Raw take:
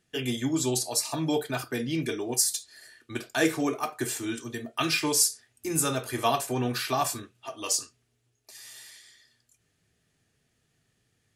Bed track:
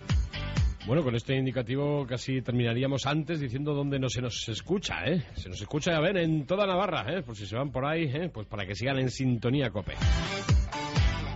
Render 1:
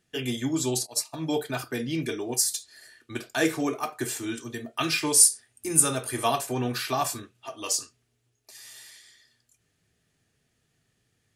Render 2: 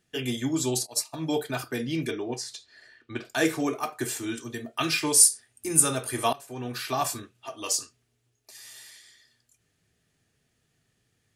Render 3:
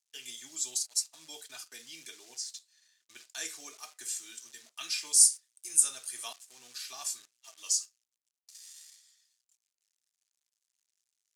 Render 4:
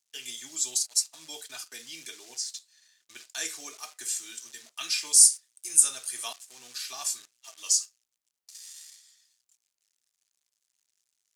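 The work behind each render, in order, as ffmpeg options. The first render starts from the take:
-filter_complex "[0:a]asplit=3[a][b][c];[a]afade=t=out:st=0.85:d=0.02[d];[b]agate=range=-33dB:threshold=-26dB:ratio=3:release=100:detection=peak,afade=t=in:st=0.85:d=0.02,afade=t=out:st=1.37:d=0.02[e];[c]afade=t=in:st=1.37:d=0.02[f];[d][e][f]amix=inputs=3:normalize=0,asettb=1/sr,asplit=3[g][h][i];[g]atrim=end=5.144[j];[h]atrim=start=5.14:end=6.39,asetpts=PTS-STARTPTS,afade=t=in:d=0.004:c=qsin,afade=t=out:st=1.246:d=0.004:c=qsin,equalizer=f=9.2k:w=4.6:g=12.5[k];[i]atrim=start=6.386[l];[j][k]acrossfade=d=0.004:c1=hsin:c2=qsin[m];[m][l]acrossfade=d=0.004:c1=qsin:c2=hsin"
-filter_complex "[0:a]asettb=1/sr,asplit=3[a][b][c];[a]atrim=end=2.114[d];[b]atrim=start=2.11:end=3.25,asetpts=PTS-STARTPTS,afade=t=in:d=0.004:c=qsin,afade=t=out:st=1.136:d=0.004:c=qsin,lowpass=3.6k[e];[c]atrim=start=3.246[f];[d][e]acrossfade=d=0.004:c1=hsin:c2=qsin[g];[g][f]acrossfade=d=0.004:c1=qsin:c2=hsin,asplit=2[h][i];[h]atrim=end=6.33,asetpts=PTS-STARTPTS,afade=t=out:st=6.326:d=0.004:c=hsin:silence=0.0841395[j];[i]atrim=start=6.33,asetpts=PTS-STARTPTS,afade=t=in:d=0.71:silence=0.0841395[k];[j][k]concat=n=2:v=0:a=1"
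-af "acrusher=bits=8:dc=4:mix=0:aa=0.000001,bandpass=f=6.7k:t=q:w=1.5:csg=0"
-af "volume=5dB,alimiter=limit=-3dB:level=0:latency=1"

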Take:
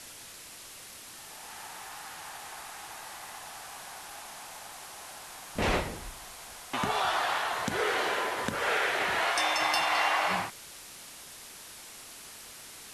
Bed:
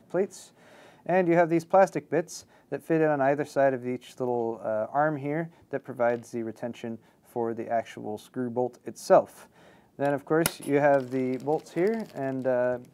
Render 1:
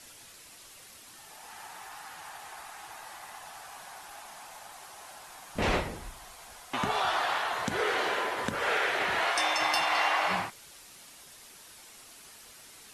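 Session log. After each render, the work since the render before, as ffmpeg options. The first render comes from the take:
-af "afftdn=nr=6:nf=-48"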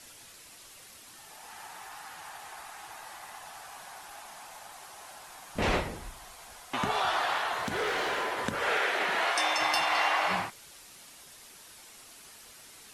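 -filter_complex "[0:a]asettb=1/sr,asplit=3[a][b][c];[a]atrim=end=7.544[d];[b]atrim=start=7.54:end=8.3,asetpts=PTS-STARTPTS,afade=t=in:d=0.004:c=qsin,afade=t=out:st=0.756:d=0.004:c=qsin,volume=26.5dB,asoftclip=hard,volume=-26.5dB[e];[c]atrim=start=8.296[f];[d][e]acrossfade=d=0.004:c1=hsin:c2=qsin[g];[g][f]acrossfade=d=0.004:c1=qsin:c2=hsin,asettb=1/sr,asplit=3[h][i][j];[h]atrim=end=8.814[k];[i]atrim=start=8.81:end=9.58,asetpts=PTS-STARTPTS,afade=t=in:d=0.004:c=qsin,afade=t=out:st=0.766:d=0.004:c=qsin,highpass=f=170:w=0.5412,highpass=f=170:w=1.3066[l];[j]atrim=start=9.576[m];[k][l]acrossfade=d=0.004:c1=hsin:c2=qsin[n];[n][m]acrossfade=d=0.004:c1=qsin:c2=hsin"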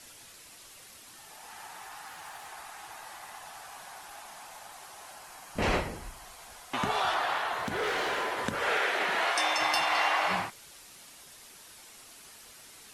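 -filter_complex "[0:a]asettb=1/sr,asplit=3[a][b][c];[a]atrim=end=2.074[d];[b]atrim=start=2.07:end=2.48,asetpts=PTS-STARTPTS,afade=t=in:d=0.004:c=qsin,afade=t=out:st=0.406:d=0.004:c=qsin,acrusher=bits=6:mode=log:mix=0:aa=0.000001[e];[c]atrim=start=2.476[f];[d][e]acrossfade=d=0.004:c1=hsin:c2=qsin[g];[g][f]acrossfade=d=0.004:c1=qsin:c2=hsin,asettb=1/sr,asplit=3[h][i][j];[h]atrim=end=5.134[k];[i]atrim=start=5.13:end=6.26,asetpts=PTS-STARTPTS,afade=t=in:d=0.004:c=qsin,afade=t=out:st=1.126:d=0.004:c=qsin,bandreject=f=3.6k:w=12[l];[j]atrim=start=6.256[m];[k][l]acrossfade=d=0.004:c1=hsin:c2=qsin[n];[n][m]acrossfade=d=0.004:c1=qsin:c2=hsin,asettb=1/sr,asplit=3[o][p][q];[o]atrim=end=7.144[r];[p]atrim=start=7.14:end=7.83,asetpts=PTS-STARTPTS,afade=t=in:d=0.004:c=qsin,afade=t=out:st=0.686:d=0.004:c=qsin,equalizer=f=6.5k:t=o:w=2.2:g=-3.5[s];[q]atrim=start=7.826[t];[r][s]acrossfade=d=0.004:c1=hsin:c2=qsin[u];[u][t]acrossfade=d=0.004:c1=qsin:c2=hsin"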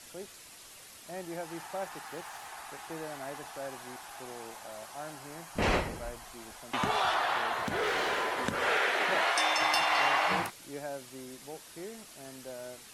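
-filter_complex "[1:a]volume=-18dB[a];[0:a][a]amix=inputs=2:normalize=0"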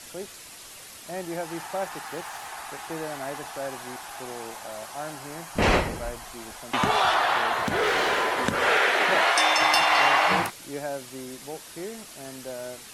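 -af "volume=7dB"

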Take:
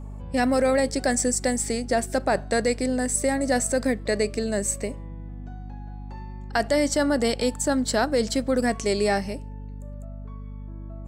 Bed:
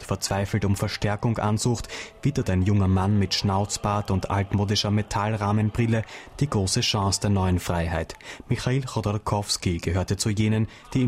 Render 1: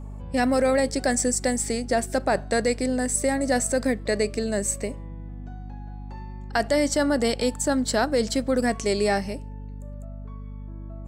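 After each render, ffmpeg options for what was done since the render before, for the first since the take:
-af anull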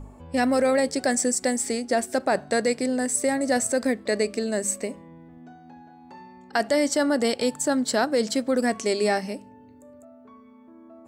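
-af "bandreject=f=50:t=h:w=4,bandreject=f=100:t=h:w=4,bandreject=f=150:t=h:w=4,bandreject=f=200:t=h:w=4"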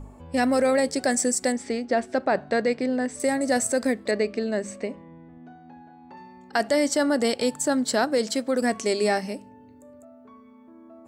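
-filter_complex "[0:a]asettb=1/sr,asplit=3[a][b][c];[a]atrim=end=1.524[d];[b]atrim=start=1.52:end=3.2,asetpts=PTS-STARTPTS,afade=t=in:d=0.004:c=qsin,afade=t=out:st=1.676:d=0.004:c=qsin,lowpass=3.6k[e];[c]atrim=start=3.196[f];[d][e]acrossfade=d=0.004:c1=hsin:c2=qsin[g];[g][f]acrossfade=d=0.004:c1=qsin:c2=hsin,asettb=1/sr,asplit=3[h][i][j];[h]atrim=end=4.114[k];[i]atrim=start=4.11:end=6.17,asetpts=PTS-STARTPTS,afade=t=in:d=0.004:c=qsin,afade=t=out:st=2.056:d=0.004:c=qsin,lowpass=3.7k[l];[j]atrim=start=6.166[m];[k][l]acrossfade=d=0.004:c1=hsin:c2=qsin[n];[n][m]acrossfade=d=0.004:c1=qsin:c2=hsin,asettb=1/sr,asplit=3[o][p][q];[o]atrim=end=8.184[r];[p]atrim=start=8.18:end=8.62,asetpts=PTS-STARTPTS,afade=t=in:d=0.004:c=qsin,afade=t=out:st=0.436:d=0.004:c=qsin,lowshelf=f=140:g=-10[s];[q]atrim=start=8.616[t];[r][s]acrossfade=d=0.004:c1=hsin:c2=qsin[u];[u][t]acrossfade=d=0.004:c1=qsin:c2=hsin"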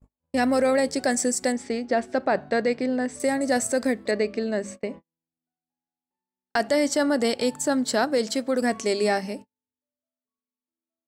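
-af "agate=range=-47dB:threshold=-37dB:ratio=16:detection=peak,equalizer=f=8.5k:t=o:w=0.33:g=-2.5"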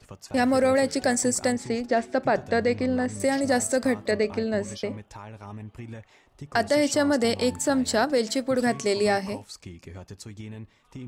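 -filter_complex "[1:a]volume=-17dB[a];[0:a][a]amix=inputs=2:normalize=0"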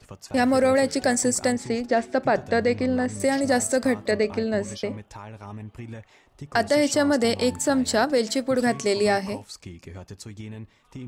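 -af "volume=1.5dB"

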